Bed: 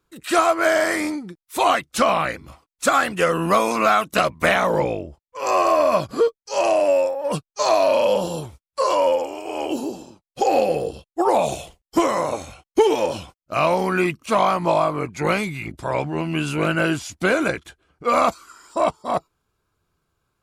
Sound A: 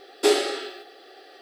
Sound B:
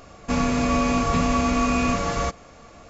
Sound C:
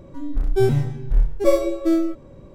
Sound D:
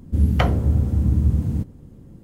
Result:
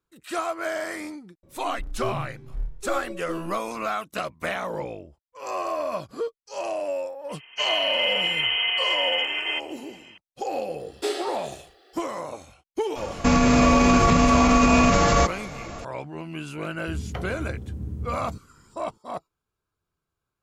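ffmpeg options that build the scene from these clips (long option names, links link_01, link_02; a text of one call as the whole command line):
ffmpeg -i bed.wav -i cue0.wav -i cue1.wav -i cue2.wav -i cue3.wav -filter_complex "[2:a]asplit=2[link_01][link_02];[0:a]volume=-11dB[link_03];[link_01]lowpass=frequency=2700:width_type=q:width=0.5098,lowpass=frequency=2700:width_type=q:width=0.6013,lowpass=frequency=2700:width_type=q:width=0.9,lowpass=frequency=2700:width_type=q:width=2.563,afreqshift=-3200[link_04];[link_02]alimiter=level_in=17.5dB:limit=-1dB:release=50:level=0:latency=1[link_05];[4:a]equalizer=frequency=400:width_type=o:width=0.32:gain=7.5[link_06];[3:a]atrim=end=2.54,asetpts=PTS-STARTPTS,volume=-13dB,afade=type=in:duration=0.004:curve=hsin,afade=type=out:start_time=2.536:duration=0.004:curve=hsin,adelay=1430[link_07];[link_04]atrim=end=2.89,asetpts=PTS-STARTPTS,volume=-3.5dB,afade=type=in:duration=0.004:curve=hsin,afade=type=out:start_time=2.886:duration=0.004:curve=hsin,adelay=7290[link_08];[1:a]atrim=end=1.41,asetpts=PTS-STARTPTS,volume=-8dB,afade=type=in:duration=0.004:curve=hsin,afade=type=out:start_time=1.406:duration=0.004:curve=hsin,adelay=10790[link_09];[link_05]atrim=end=2.89,asetpts=PTS-STARTPTS,volume=-8dB,afade=type=in:duration=0.004:curve=hsin,afade=type=out:start_time=2.886:duration=0.004:curve=hsin,adelay=12960[link_10];[link_06]atrim=end=2.23,asetpts=PTS-STARTPTS,volume=-14.5dB,afade=type=in:duration=0.004:curve=hsin,afade=type=out:start_time=2.226:duration=0.004:curve=hsin,adelay=16750[link_11];[link_03][link_07][link_08][link_09][link_10][link_11]amix=inputs=6:normalize=0" out.wav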